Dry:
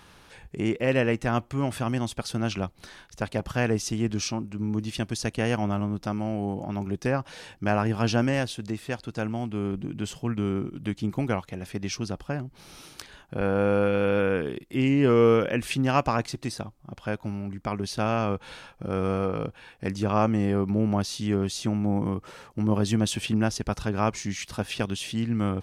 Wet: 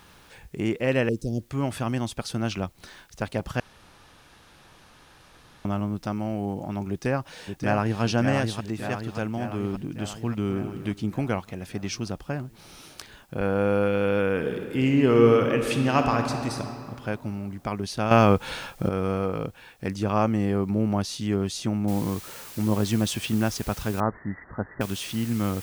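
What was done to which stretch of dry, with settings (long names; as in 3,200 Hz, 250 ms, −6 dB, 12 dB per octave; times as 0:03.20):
0:01.09–0:01.50: Chebyshev band-stop filter 460–4,600 Hz, order 3
0:03.60–0:05.65: fill with room tone
0:06.89–0:08.02: delay throw 580 ms, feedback 65%, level −5.5 dB
0:10.19–0:10.66: delay throw 260 ms, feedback 25%, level −12 dB
0:14.30–0:16.58: thrown reverb, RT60 2.5 s, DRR 4 dB
0:18.11–0:18.89: clip gain +9 dB
0:21.88: noise floor change −65 dB −43 dB
0:24.00–0:24.81: Chebyshev low-pass filter 2,000 Hz, order 10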